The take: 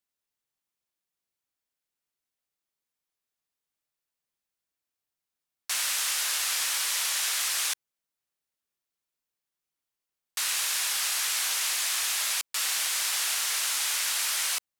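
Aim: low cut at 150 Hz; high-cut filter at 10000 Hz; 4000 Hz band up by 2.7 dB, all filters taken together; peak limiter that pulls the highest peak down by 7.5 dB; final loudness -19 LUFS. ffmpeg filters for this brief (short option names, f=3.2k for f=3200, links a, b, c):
-af "highpass=150,lowpass=10k,equalizer=f=4k:t=o:g=3.5,volume=10dB,alimiter=limit=-12dB:level=0:latency=1"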